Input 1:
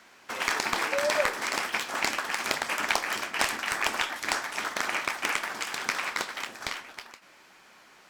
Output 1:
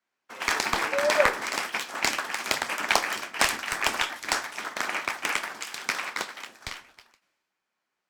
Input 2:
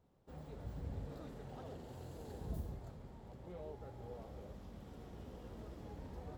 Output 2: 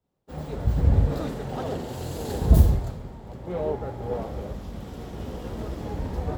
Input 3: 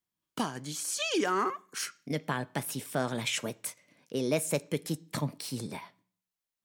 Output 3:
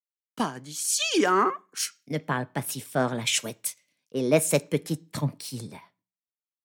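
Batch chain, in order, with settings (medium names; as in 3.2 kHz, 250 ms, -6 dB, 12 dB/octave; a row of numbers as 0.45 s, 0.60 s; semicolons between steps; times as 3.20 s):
three bands expanded up and down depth 100%; normalise loudness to -27 LUFS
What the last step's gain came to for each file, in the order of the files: +1.0 dB, +20.0 dB, +4.5 dB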